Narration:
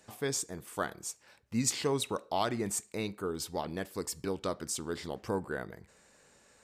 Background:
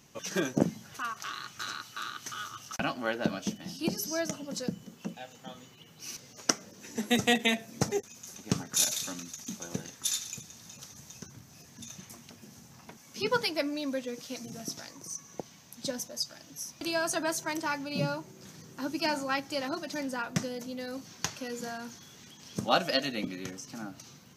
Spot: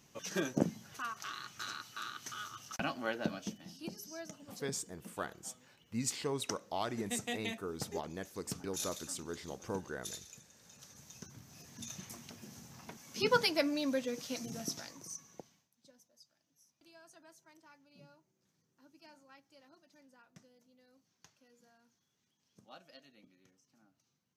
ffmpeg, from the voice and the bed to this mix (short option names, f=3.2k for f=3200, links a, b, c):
-filter_complex "[0:a]adelay=4400,volume=-6dB[a];[1:a]volume=8.5dB,afade=t=out:st=3.09:d=0.84:silence=0.354813,afade=t=in:st=10.55:d=1.36:silence=0.211349,afade=t=out:st=14.59:d=1.1:silence=0.0375837[b];[a][b]amix=inputs=2:normalize=0"